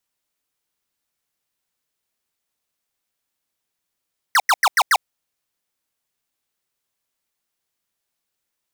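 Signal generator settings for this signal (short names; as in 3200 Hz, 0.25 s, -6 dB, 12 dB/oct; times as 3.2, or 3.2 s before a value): burst of laser zaps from 2100 Hz, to 690 Hz, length 0.05 s square, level -14 dB, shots 5, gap 0.09 s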